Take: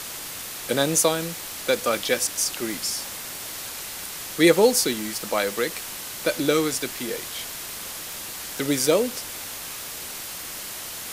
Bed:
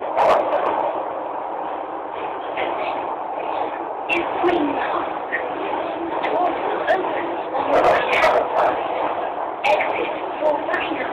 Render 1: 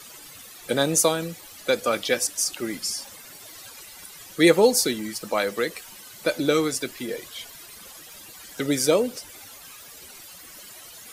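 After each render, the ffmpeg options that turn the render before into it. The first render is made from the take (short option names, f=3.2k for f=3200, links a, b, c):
-af "afftdn=nr=14:nf=-35"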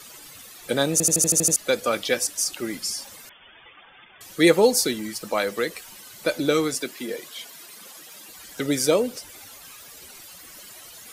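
-filter_complex "[0:a]asettb=1/sr,asplit=3[a][b][c];[a]atrim=end=3.294[d];[b]atrim=start=3.29:end=4.21,asetpts=PTS-STARTPTS,afade=t=in:d=0.004:c=qsin,afade=t=out:st=0.916:d=0.004:c=qsin,lowpass=f=3.1k:t=q:w=0.5098,lowpass=f=3.1k:t=q:w=0.6013,lowpass=f=3.1k:t=q:w=0.9,lowpass=f=3.1k:t=q:w=2.563,afreqshift=-3600[e];[c]atrim=start=4.206[f];[d][e]acrossfade=d=0.004:c1=hsin:c2=qsin[g];[g][f]acrossfade=d=0.004:c1=qsin:c2=hsin,asettb=1/sr,asplit=3[h][i][j];[h]atrim=end=6.754[k];[i]atrim=start=6.75:end=8.3,asetpts=PTS-STARTPTS,afade=t=in:d=0.004:c=qsin,afade=t=out:st=1.546:d=0.004:c=qsin,highpass=f=160:w=0.5412,highpass=f=160:w=1.3066[l];[j]atrim=start=8.296[m];[k][l]acrossfade=d=0.004:c1=hsin:c2=qsin[n];[n][m]acrossfade=d=0.004:c1=qsin:c2=hsin,asplit=9[o][p][q][r][s][t][u][v][w];[o]atrim=end=1.002[x];[p]atrim=start=0.918:end=1.002[y];[q]atrim=start=0.918:end=1.002[z];[r]atrim=start=0.918:end=1.002[aa];[s]atrim=start=0.918:end=1.002[ab];[t]atrim=start=0.918:end=1.002[ac];[u]atrim=start=0.918:end=1.002[ad];[v]atrim=start=0.918:end=1.002[ae];[w]atrim=start=1.558[af];[x][y]acrossfade=d=0.004:c1=hsin:c2=hsin[ag];[ag][z]acrossfade=d=0.004:c1=hsin:c2=hsin[ah];[ah][aa]acrossfade=d=0.004:c1=hsin:c2=hsin[ai];[ai][ab]acrossfade=d=0.004:c1=hsin:c2=hsin[aj];[aj][ac]acrossfade=d=0.004:c1=hsin:c2=hsin[ak];[ak][ad]acrossfade=d=0.004:c1=hsin:c2=hsin[al];[al][ae]acrossfade=d=0.004:c1=hsin:c2=hsin[am];[am][af]acrossfade=d=0.004:c1=hsin:c2=hsin"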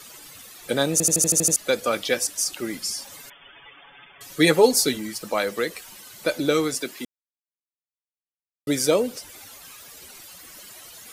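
-filter_complex "[0:a]asettb=1/sr,asplit=3[a][b][c];[a]atrim=end=3.094[d];[b]atrim=start=3.09:end=4.97,asetpts=PTS-STARTPTS,afade=t=in:d=0.004:c=qsin,afade=t=out:st=1.876:d=0.004:c=qsin,aecho=1:1:7.1:0.65,atrim=end_sample=82908[e];[c]atrim=start=4.966[f];[d][e]acrossfade=d=0.004:c1=hsin:c2=qsin[g];[g][f]acrossfade=d=0.004:c1=qsin:c2=hsin,asplit=3[h][i][j];[h]atrim=end=7.05,asetpts=PTS-STARTPTS,afade=t=out:st=7.046:d=0.004:c=hsin[k];[i]atrim=start=7.05:end=8.67,asetpts=PTS-STARTPTS,volume=0[l];[j]atrim=start=8.67,asetpts=PTS-STARTPTS,afade=t=in:d=0.004:c=hsin[m];[k][l][m]concat=n=3:v=0:a=1"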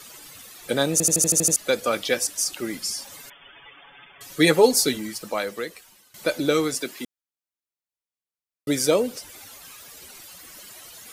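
-filter_complex "[0:a]asplit=2[a][b];[a]atrim=end=6.14,asetpts=PTS-STARTPTS,afade=t=out:st=5.03:d=1.11:silence=0.149624[c];[b]atrim=start=6.14,asetpts=PTS-STARTPTS,afade=t=in:d=0.004:c=hsin:silence=0.149624[d];[c][d]concat=n=2:v=0:a=1"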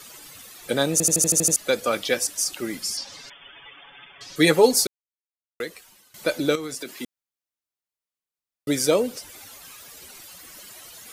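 -filter_complex "[0:a]asettb=1/sr,asplit=3[a][b][c];[a]atrim=end=2.974[d];[b]atrim=start=2.97:end=4.36,asetpts=PTS-STARTPTS,afade=t=in:d=0.004:c=qsin,afade=t=out:st=1.386:d=0.004:c=qsin,lowpass=f=5k:t=q:w=2.3[e];[c]atrim=start=4.356[f];[d][e]acrossfade=d=0.004:c1=hsin:c2=qsin[g];[g][f]acrossfade=d=0.004:c1=qsin:c2=hsin,asettb=1/sr,asplit=3[h][i][j];[h]atrim=end=6.554[k];[i]atrim=start=6.55:end=6.98,asetpts=PTS-STARTPTS,afade=t=in:d=0.004:c=qsin,afade=t=out:st=0.426:d=0.004:c=qsin,acompressor=threshold=-29dB:ratio=5:attack=3.2:release=140:knee=1:detection=peak[l];[j]atrim=start=6.976[m];[k][l]acrossfade=d=0.004:c1=hsin:c2=qsin[n];[n][m]acrossfade=d=0.004:c1=qsin:c2=hsin,asplit=3[o][p][q];[o]atrim=end=4.87,asetpts=PTS-STARTPTS,afade=t=out:st=4.866:d=0.004:c=hsin[r];[p]atrim=start=4.87:end=5.6,asetpts=PTS-STARTPTS,volume=0[s];[q]atrim=start=5.6,asetpts=PTS-STARTPTS,afade=t=in:d=0.004:c=hsin[t];[r][s][t]concat=n=3:v=0:a=1"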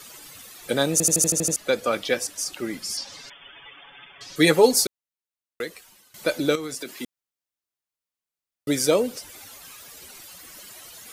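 -filter_complex "[0:a]asettb=1/sr,asplit=3[a][b][c];[a]atrim=end=1.304[d];[b]atrim=start=1.3:end=2.9,asetpts=PTS-STARTPTS,afade=t=in:d=0.004:c=qsin,afade=t=out:st=1.596:d=0.004:c=qsin,highshelf=f=4.9k:g=-6.5[e];[c]atrim=start=2.896[f];[d][e]acrossfade=d=0.004:c1=hsin:c2=qsin[g];[g][f]acrossfade=d=0.004:c1=qsin:c2=hsin"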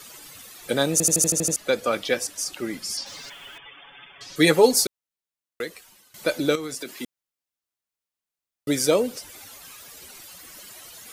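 -filter_complex "[0:a]asettb=1/sr,asplit=3[a][b][c];[a]atrim=end=3.064[d];[b]atrim=start=3.06:end=3.58,asetpts=PTS-STARTPTS,afade=t=in:d=0.004:c=qsin,afade=t=out:st=0.516:d=0.004:c=qsin,aeval=exprs='val(0)+0.5*0.00631*sgn(val(0))':c=same[e];[c]atrim=start=3.576[f];[d][e]acrossfade=d=0.004:c1=hsin:c2=qsin[g];[g][f]acrossfade=d=0.004:c1=qsin:c2=hsin"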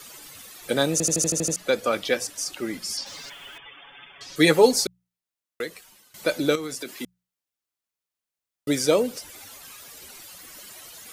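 -filter_complex "[0:a]bandreject=f=60:t=h:w=6,bandreject=f=120:t=h:w=6,bandreject=f=180:t=h:w=6,acrossover=split=7500[a][b];[b]acompressor=threshold=-32dB:ratio=4:attack=1:release=60[c];[a][c]amix=inputs=2:normalize=0"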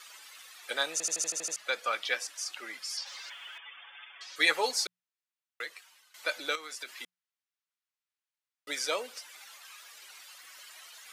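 -af "highpass=1.2k,aemphasis=mode=reproduction:type=50kf"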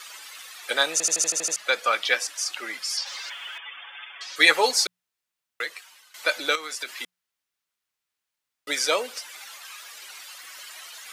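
-af "volume=8.5dB"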